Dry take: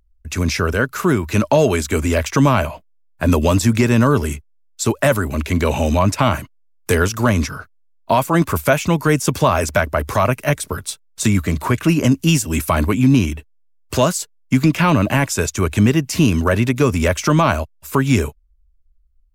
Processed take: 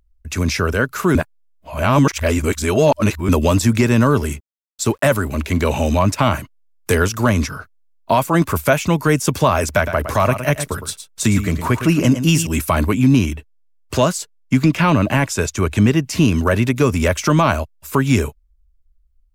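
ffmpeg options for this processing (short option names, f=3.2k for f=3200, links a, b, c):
-filter_complex "[0:a]asettb=1/sr,asplit=3[a][b][c];[a]atrim=end=3.924[d];[b]atrim=start=3.92:end=6.28,asetpts=PTS-STARTPTS,afade=t=in:d=0.004:c=qsin,afade=t=out:st=2.356:d=0.004:c=qsin,aeval=exprs='sgn(val(0))*max(abs(val(0))-0.00501,0)':c=same[e];[c]atrim=start=6.276[f];[d][e]acrossfade=d=0.004:c1=hsin:c2=qsin[g];[g][f]acrossfade=d=0.004:c1=qsin:c2=hsin,asettb=1/sr,asplit=3[h][i][j];[h]atrim=end=9.694[k];[i]atrim=start=9.69:end=12.47,asetpts=PTS-STARTPTS,afade=t=in:d=0.004:c=qsin,afade=t=out:st=2.776:d=0.004:c=qsin,aecho=1:1:112:0.316,atrim=end_sample=122598[l];[j]atrim=start=12.466[m];[k][l]acrossfade=d=0.004:c1=hsin:c2=qsin[n];[n][m]acrossfade=d=0.004:c1=qsin:c2=hsin,asettb=1/sr,asplit=3[o][p][q];[o]atrim=end=13.354[r];[p]atrim=start=13.35:end=16.36,asetpts=PTS-STARTPTS,afade=t=in:d=0.004:c=qsin,afade=t=out:st=3.006:d=0.004:c=qsin,highshelf=f=9.2k:g=-6.5[s];[q]atrim=start=16.356[t];[r][s]acrossfade=d=0.004:c1=hsin:c2=qsin[u];[u][t]acrossfade=d=0.004:c1=qsin:c2=hsin,asplit=3[v][w][x];[v]atrim=end=1.152[y];[w]atrim=start=1.148:end=3.292,asetpts=PTS-STARTPTS,areverse[z];[x]atrim=start=3.288[aa];[y][z]acrossfade=d=0.004:c1=hsin:c2=hsin[ab];[ab][aa]acrossfade=d=0.004:c1=hsin:c2=hsin"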